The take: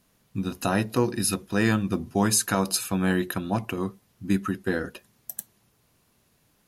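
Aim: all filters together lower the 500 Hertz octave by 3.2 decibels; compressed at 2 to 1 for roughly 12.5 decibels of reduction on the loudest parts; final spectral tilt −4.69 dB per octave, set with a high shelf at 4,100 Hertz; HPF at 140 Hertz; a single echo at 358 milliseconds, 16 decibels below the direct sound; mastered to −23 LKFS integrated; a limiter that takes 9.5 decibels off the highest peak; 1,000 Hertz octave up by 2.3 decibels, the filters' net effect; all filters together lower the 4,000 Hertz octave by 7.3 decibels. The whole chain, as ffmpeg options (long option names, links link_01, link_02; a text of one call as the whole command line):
ffmpeg -i in.wav -af "highpass=140,equalizer=frequency=500:width_type=o:gain=-5.5,equalizer=frequency=1000:width_type=o:gain=5.5,equalizer=frequency=4000:width_type=o:gain=-3.5,highshelf=frequency=4100:gain=-9,acompressor=threshold=-43dB:ratio=2,alimiter=level_in=5.5dB:limit=-24dB:level=0:latency=1,volume=-5.5dB,aecho=1:1:358:0.158,volume=19dB" out.wav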